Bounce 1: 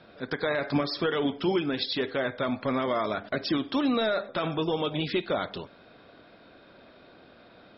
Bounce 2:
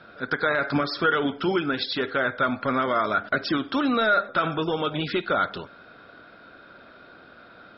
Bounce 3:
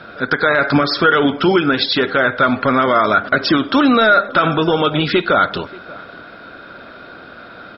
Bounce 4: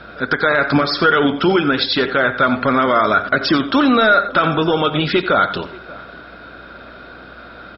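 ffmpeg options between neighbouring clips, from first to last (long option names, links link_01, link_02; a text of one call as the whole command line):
ffmpeg -i in.wav -af "equalizer=frequency=1400:width_type=o:width=0.38:gain=12.5,volume=1.5dB" out.wav
ffmpeg -i in.wav -filter_complex "[0:a]asplit=2[link_01][link_02];[link_02]adelay=583.1,volume=-23dB,highshelf=frequency=4000:gain=-13.1[link_03];[link_01][link_03]amix=inputs=2:normalize=0,asplit=2[link_04][link_05];[link_05]alimiter=limit=-17.5dB:level=0:latency=1:release=117,volume=2.5dB[link_06];[link_04][link_06]amix=inputs=2:normalize=0,volume=4.5dB" out.wav
ffmpeg -i in.wav -af "aeval=exprs='val(0)+0.00447*(sin(2*PI*60*n/s)+sin(2*PI*2*60*n/s)/2+sin(2*PI*3*60*n/s)/3+sin(2*PI*4*60*n/s)/4+sin(2*PI*5*60*n/s)/5)':channel_layout=same,aecho=1:1:88:0.211,volume=-1dB" out.wav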